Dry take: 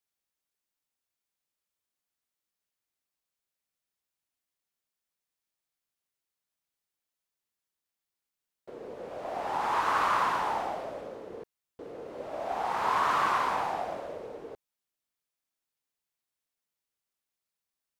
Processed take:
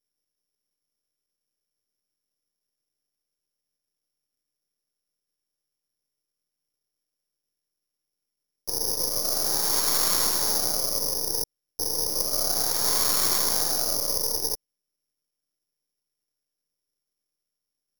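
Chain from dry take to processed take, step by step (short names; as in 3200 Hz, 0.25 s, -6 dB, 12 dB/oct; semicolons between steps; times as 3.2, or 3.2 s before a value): resonant low shelf 640 Hz +9 dB, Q 1.5; half-wave rectifier; careless resampling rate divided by 8×, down filtered, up zero stuff; in parallel at -2.5 dB: limiter -8 dBFS, peak gain reduction 9.5 dB; on the sum: gain -5 dB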